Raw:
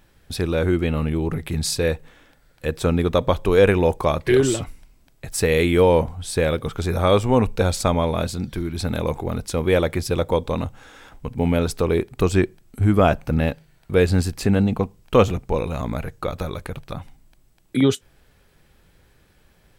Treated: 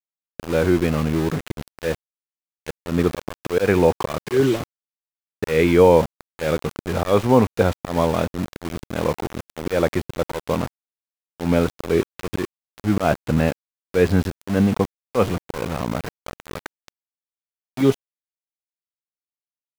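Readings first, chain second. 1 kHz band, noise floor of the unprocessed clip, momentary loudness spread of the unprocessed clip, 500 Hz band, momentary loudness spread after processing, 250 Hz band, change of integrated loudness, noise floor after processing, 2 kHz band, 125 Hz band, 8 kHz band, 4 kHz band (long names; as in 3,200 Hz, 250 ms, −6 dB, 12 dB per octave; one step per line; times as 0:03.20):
0.0 dB, −58 dBFS, 12 LU, −0.5 dB, 15 LU, +0.5 dB, −0.5 dB, below −85 dBFS, −1.0 dB, −2.5 dB, −7.0 dB, −4.0 dB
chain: volume swells 149 ms
band-pass filter 110–2,400 Hz
centre clipping without the shift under −28.5 dBFS
level +3 dB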